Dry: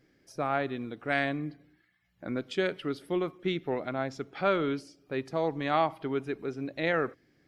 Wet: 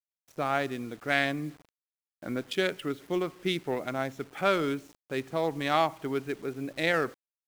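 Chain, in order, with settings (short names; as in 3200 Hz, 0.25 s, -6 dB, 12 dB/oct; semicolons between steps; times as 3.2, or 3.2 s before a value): Wiener smoothing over 9 samples; high shelf 2900 Hz +11.5 dB; bit-crush 9-bit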